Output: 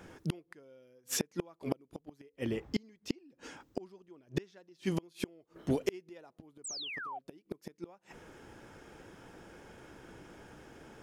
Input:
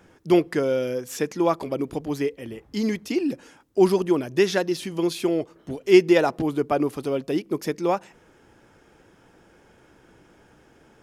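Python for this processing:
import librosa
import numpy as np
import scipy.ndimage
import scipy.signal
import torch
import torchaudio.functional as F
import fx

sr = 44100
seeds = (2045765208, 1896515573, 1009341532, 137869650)

y = fx.gate_flip(x, sr, shuts_db=-20.0, range_db=-36)
y = fx.peak_eq(y, sr, hz=11000.0, db=-14.0, octaves=0.41, at=(2.39, 4.86))
y = fx.spec_paint(y, sr, seeds[0], shape='fall', start_s=6.64, length_s=0.55, low_hz=680.0, high_hz=8600.0, level_db=-43.0)
y = F.gain(torch.from_numpy(y), 2.0).numpy()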